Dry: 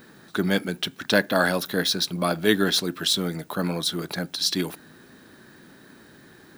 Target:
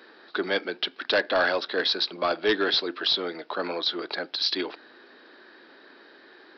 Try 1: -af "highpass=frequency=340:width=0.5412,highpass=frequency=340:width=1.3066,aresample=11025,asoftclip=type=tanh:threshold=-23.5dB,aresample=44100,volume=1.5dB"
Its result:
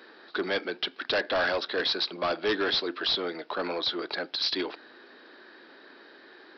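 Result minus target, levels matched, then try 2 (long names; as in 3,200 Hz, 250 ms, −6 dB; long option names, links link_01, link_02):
soft clipping: distortion +6 dB
-af "highpass=frequency=340:width=0.5412,highpass=frequency=340:width=1.3066,aresample=11025,asoftclip=type=tanh:threshold=-16.5dB,aresample=44100,volume=1.5dB"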